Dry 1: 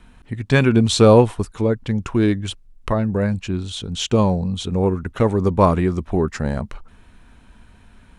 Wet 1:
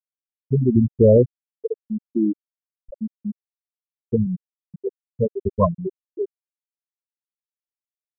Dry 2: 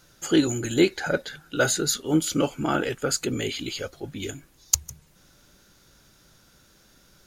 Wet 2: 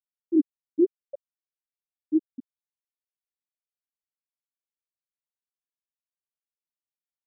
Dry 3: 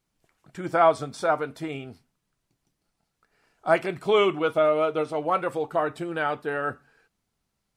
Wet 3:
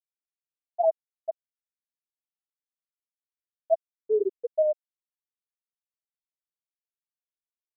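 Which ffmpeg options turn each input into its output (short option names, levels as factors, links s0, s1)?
-af "aeval=exprs='0.562*(abs(mod(val(0)/0.562+3,4)-2)-1)':c=same,afftfilt=real='re*gte(hypot(re,im),1.12)':imag='im*gte(hypot(re,im),1.12)':win_size=1024:overlap=0.75"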